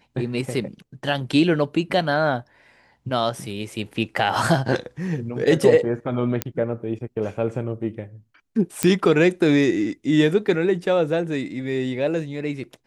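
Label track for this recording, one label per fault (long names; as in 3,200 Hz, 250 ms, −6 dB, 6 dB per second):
6.420000	6.420000	click −6 dBFS
8.830000	8.830000	click −3 dBFS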